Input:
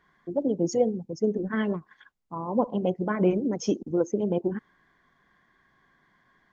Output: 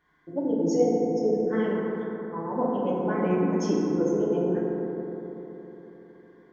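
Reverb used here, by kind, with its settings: FDN reverb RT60 3.9 s, high-frequency decay 0.3×, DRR -6 dB; gain -6 dB

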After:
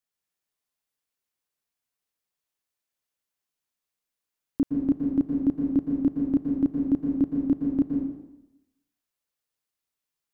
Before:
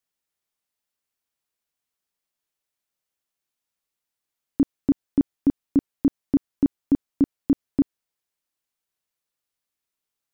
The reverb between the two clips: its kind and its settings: plate-style reverb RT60 0.94 s, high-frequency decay 0.85×, pre-delay 0.105 s, DRR 0.5 dB; gain -4.5 dB

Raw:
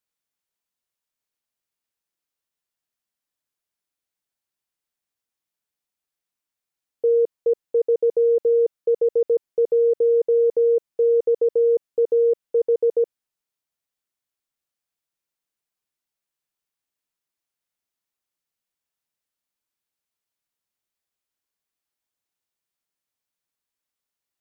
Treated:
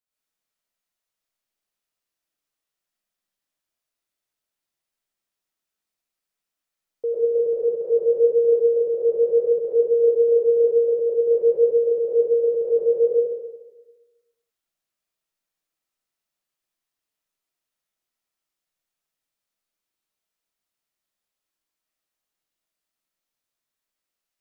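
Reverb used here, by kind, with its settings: digital reverb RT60 1.2 s, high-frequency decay 0.85×, pre-delay 65 ms, DRR -8 dB; gain -6 dB

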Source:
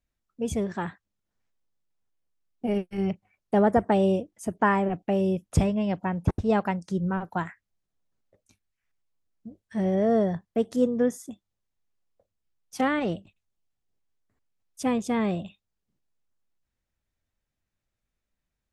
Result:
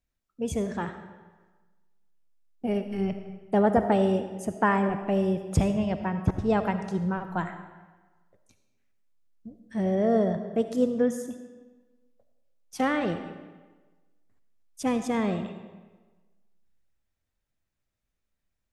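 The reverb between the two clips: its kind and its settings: digital reverb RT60 1.3 s, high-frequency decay 0.8×, pre-delay 30 ms, DRR 8.5 dB; gain -1 dB

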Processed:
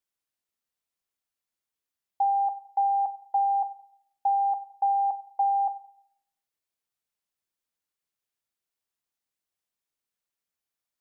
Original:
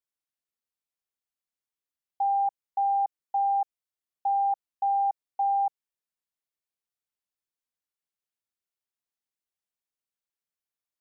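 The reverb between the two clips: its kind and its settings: plate-style reverb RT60 0.71 s, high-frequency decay 0.8×, pre-delay 0 ms, DRR 13.5 dB; gain +3 dB

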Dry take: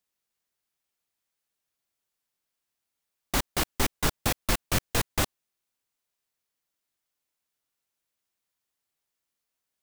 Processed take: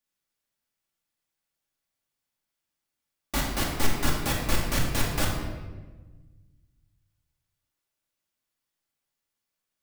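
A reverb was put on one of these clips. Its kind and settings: shoebox room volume 1000 m³, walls mixed, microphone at 2.4 m; gain -4.5 dB

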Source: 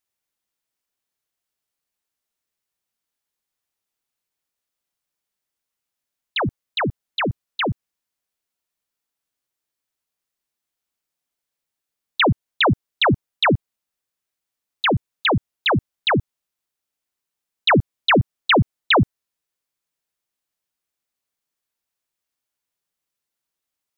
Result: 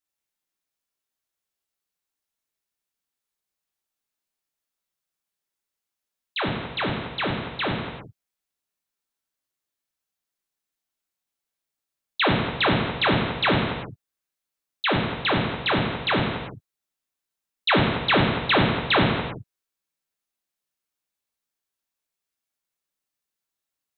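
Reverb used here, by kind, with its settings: non-linear reverb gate 0.41 s falling, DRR -2 dB; gain -6.5 dB

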